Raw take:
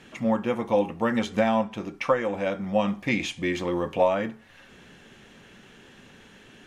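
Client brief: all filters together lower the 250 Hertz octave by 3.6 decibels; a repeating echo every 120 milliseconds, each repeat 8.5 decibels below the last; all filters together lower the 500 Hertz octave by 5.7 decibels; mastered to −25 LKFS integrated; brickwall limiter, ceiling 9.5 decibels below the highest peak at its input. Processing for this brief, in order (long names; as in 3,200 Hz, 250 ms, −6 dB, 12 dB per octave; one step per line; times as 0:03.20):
parametric band 250 Hz −3 dB
parametric band 500 Hz −6 dB
brickwall limiter −21.5 dBFS
repeating echo 120 ms, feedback 38%, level −8.5 dB
level +7 dB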